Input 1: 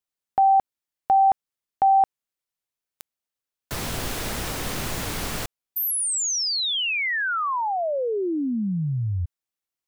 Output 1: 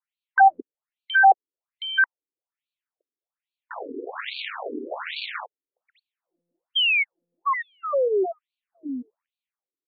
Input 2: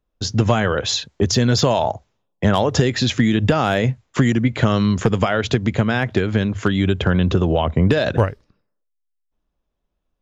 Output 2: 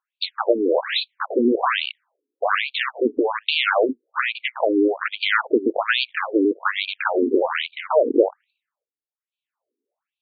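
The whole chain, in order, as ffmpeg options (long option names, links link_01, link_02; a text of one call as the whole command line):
ffmpeg -i in.wav -af "aeval=exprs='0.668*(cos(1*acos(clip(val(0)/0.668,-1,1)))-cos(1*PI/2))+0.0596*(cos(3*acos(clip(val(0)/0.668,-1,1)))-cos(3*PI/2))+0.106*(cos(8*acos(clip(val(0)/0.668,-1,1)))-cos(8*PI/2))':channel_layout=same,afftfilt=real='re*between(b*sr/1024,320*pow(3300/320,0.5+0.5*sin(2*PI*1.2*pts/sr))/1.41,320*pow(3300/320,0.5+0.5*sin(2*PI*1.2*pts/sr))*1.41)':imag='im*between(b*sr/1024,320*pow(3300/320,0.5+0.5*sin(2*PI*1.2*pts/sr))/1.41,320*pow(3300/320,0.5+0.5*sin(2*PI*1.2*pts/sr))*1.41)':win_size=1024:overlap=0.75,volume=7.5dB" out.wav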